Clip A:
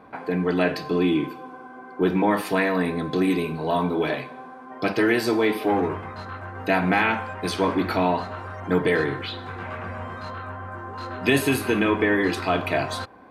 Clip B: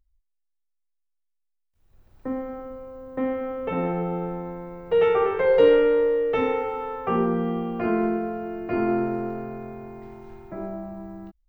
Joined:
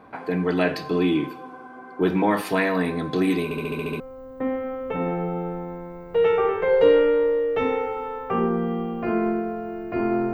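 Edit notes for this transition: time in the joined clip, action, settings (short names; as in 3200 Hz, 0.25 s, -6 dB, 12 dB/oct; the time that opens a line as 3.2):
clip A
3.44 stutter in place 0.07 s, 8 plays
4 switch to clip B from 2.77 s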